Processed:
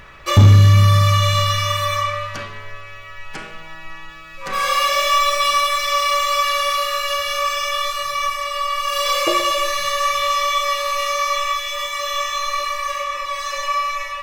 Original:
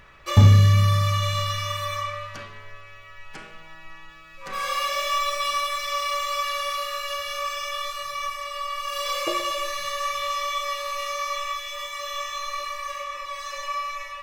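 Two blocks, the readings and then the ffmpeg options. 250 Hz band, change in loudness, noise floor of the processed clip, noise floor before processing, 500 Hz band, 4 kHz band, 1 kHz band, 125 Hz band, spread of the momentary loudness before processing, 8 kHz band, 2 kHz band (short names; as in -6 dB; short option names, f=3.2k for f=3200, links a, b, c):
+4.5 dB, +7.0 dB, -36 dBFS, -45 dBFS, +8.0 dB, +8.0 dB, +8.5 dB, +5.5 dB, 21 LU, +8.0 dB, +8.5 dB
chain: -filter_complex "[0:a]asplit=2[a][b];[b]alimiter=limit=-14.5dB:level=0:latency=1,volume=-2dB[c];[a][c]amix=inputs=2:normalize=0,asoftclip=type=tanh:threshold=-5dB,volume=3.5dB"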